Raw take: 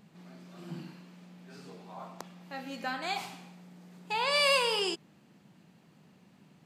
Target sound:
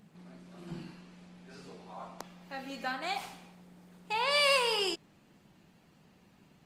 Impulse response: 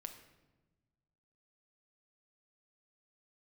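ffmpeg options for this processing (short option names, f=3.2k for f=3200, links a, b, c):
-af "asubboost=boost=6:cutoff=61" -ar 48000 -c:a libopus -b:a 24k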